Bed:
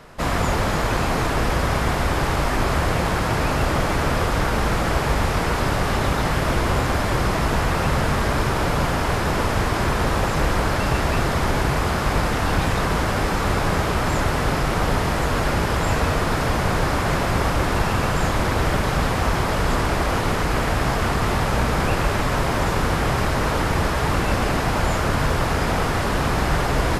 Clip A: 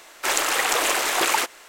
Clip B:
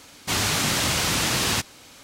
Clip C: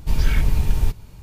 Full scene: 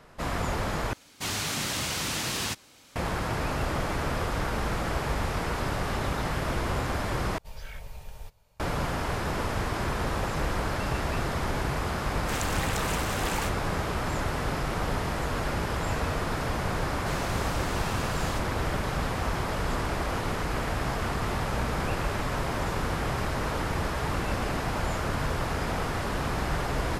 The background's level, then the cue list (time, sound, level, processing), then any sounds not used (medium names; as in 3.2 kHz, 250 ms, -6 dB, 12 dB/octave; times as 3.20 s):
bed -8.5 dB
0.93 s: replace with B -7.5 dB
7.38 s: replace with C -15.5 dB + resonant low shelf 420 Hz -8.5 dB, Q 3
12.04 s: add A -12.5 dB
16.78 s: add B -18 dB